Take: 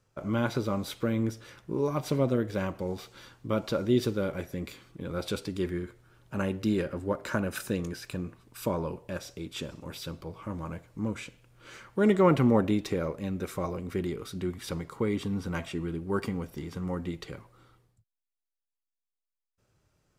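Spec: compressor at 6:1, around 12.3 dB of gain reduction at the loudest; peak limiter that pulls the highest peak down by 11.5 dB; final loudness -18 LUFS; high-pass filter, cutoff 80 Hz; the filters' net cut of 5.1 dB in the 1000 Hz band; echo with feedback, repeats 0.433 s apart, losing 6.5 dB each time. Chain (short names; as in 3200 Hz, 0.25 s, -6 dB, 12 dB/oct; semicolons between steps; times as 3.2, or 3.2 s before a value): HPF 80 Hz; bell 1000 Hz -6.5 dB; compressor 6:1, threshold -32 dBFS; limiter -29.5 dBFS; feedback echo 0.433 s, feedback 47%, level -6.5 dB; gain +22 dB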